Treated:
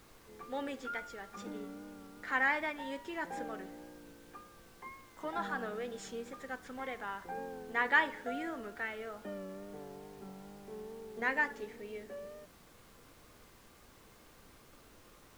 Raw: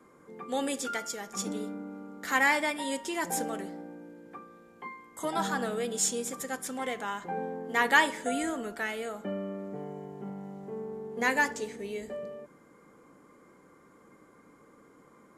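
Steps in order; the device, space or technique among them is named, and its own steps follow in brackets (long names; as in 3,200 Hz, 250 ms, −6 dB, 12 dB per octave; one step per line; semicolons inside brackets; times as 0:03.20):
horn gramophone (band-pass filter 190–3,000 Hz; parametric band 1,600 Hz +4 dB; tape wow and flutter; pink noise bed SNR 20 dB)
level −7.5 dB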